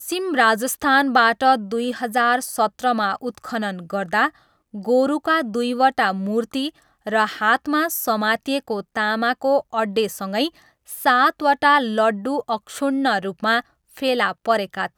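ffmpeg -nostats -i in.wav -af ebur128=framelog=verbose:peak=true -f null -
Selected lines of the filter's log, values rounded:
Integrated loudness:
  I:         -20.2 LUFS
  Threshold: -30.4 LUFS
Loudness range:
  LRA:         2.6 LU
  Threshold: -40.6 LUFS
  LRA low:   -22.0 LUFS
  LRA high:  -19.4 LUFS
True peak:
  Peak:       -2.0 dBFS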